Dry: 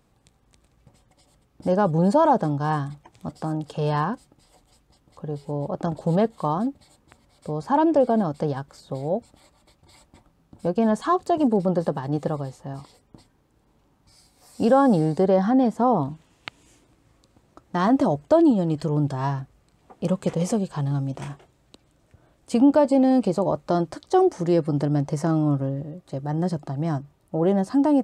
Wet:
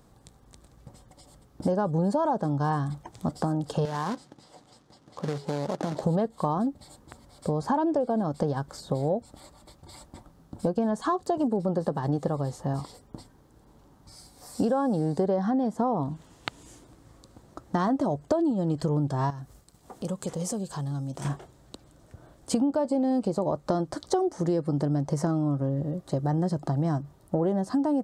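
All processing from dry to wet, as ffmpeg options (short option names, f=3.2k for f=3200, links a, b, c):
-filter_complex "[0:a]asettb=1/sr,asplit=3[a][b][c];[a]atrim=end=3.854[d];[b]atrim=start=3.85:end=6.03,asetpts=PTS-STARTPTS,afade=t=in:d=0.004:c=qsin,afade=t=out:st=2.176:d=0.004:c=qsin,acompressor=threshold=-30dB:ratio=8:attack=3.2:release=140:knee=1:detection=peak,acrusher=bits=2:mode=log:mix=0:aa=0.000001,highpass=140,lowpass=6k[e];[c]atrim=start=6.026[f];[d][e]acrossfade=d=0.004:c1=hsin:c2=qsin[g];[g][f]acrossfade=d=0.004:c1=qsin:c2=hsin,asettb=1/sr,asplit=3[h][i][j];[h]atrim=end=19.304[k];[i]atrim=start=19.3:end=21.25,asetpts=PTS-STARTPTS,afade=t=in:d=0.004:c=qsin,afade=t=out:st=1.946:d=0.004:c=qsin,agate=range=-33dB:threshold=-57dB:ratio=3:release=100:detection=peak,highshelf=f=4.4k:g=11.5,acompressor=threshold=-47dB:ratio=2:attack=3.2:release=140:knee=1:detection=peak[l];[j]atrim=start=21.246[m];[k][l]acrossfade=d=0.004:c1=hsin:c2=qsin[n];[n][m]acrossfade=d=0.004:c1=qsin:c2=hsin,equalizer=f=2.5k:w=2:g=-8.5,acompressor=threshold=-30dB:ratio=6,volume=6.5dB"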